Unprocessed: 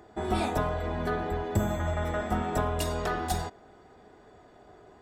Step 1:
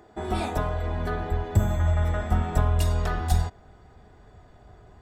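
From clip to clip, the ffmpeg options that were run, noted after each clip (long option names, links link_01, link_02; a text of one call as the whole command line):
ffmpeg -i in.wav -af "asubboost=boost=6.5:cutoff=130" out.wav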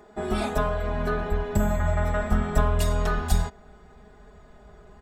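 ffmpeg -i in.wav -af "aecho=1:1:4.8:0.75" out.wav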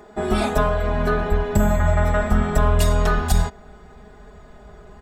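ffmpeg -i in.wav -af "alimiter=level_in=11.5dB:limit=-1dB:release=50:level=0:latency=1,volume=-5.5dB" out.wav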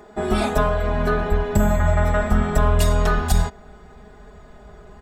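ffmpeg -i in.wav -af anull out.wav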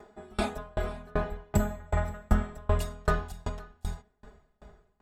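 ffmpeg -i in.wav -af "aecho=1:1:526:0.335,aeval=exprs='val(0)*pow(10,-33*if(lt(mod(2.6*n/s,1),2*abs(2.6)/1000),1-mod(2.6*n/s,1)/(2*abs(2.6)/1000),(mod(2.6*n/s,1)-2*abs(2.6)/1000)/(1-2*abs(2.6)/1000))/20)':channel_layout=same,volume=-3.5dB" out.wav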